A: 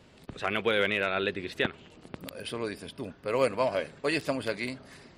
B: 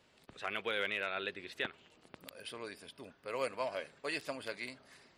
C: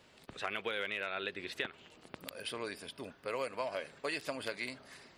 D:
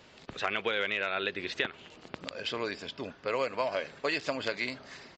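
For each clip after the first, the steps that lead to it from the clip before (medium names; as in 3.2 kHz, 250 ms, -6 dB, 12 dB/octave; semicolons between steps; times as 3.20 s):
bass shelf 400 Hz -11 dB; trim -7 dB
compression 5:1, threshold -39 dBFS, peak gain reduction 8.5 dB; trim +5.5 dB
resampled via 16 kHz; trim +6.5 dB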